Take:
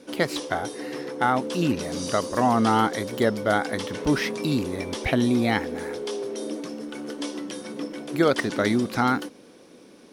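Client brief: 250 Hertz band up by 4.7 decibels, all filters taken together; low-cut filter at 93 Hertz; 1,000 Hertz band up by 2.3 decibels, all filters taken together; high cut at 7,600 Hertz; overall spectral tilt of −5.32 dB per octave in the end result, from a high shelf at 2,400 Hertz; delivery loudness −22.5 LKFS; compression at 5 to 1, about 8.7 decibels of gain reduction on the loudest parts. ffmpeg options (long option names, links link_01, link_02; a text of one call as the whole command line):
ffmpeg -i in.wav -af "highpass=93,lowpass=7600,equalizer=frequency=250:width_type=o:gain=5.5,equalizer=frequency=1000:width_type=o:gain=4,highshelf=frequency=2400:gain=-6.5,acompressor=threshold=-23dB:ratio=5,volume=6dB" out.wav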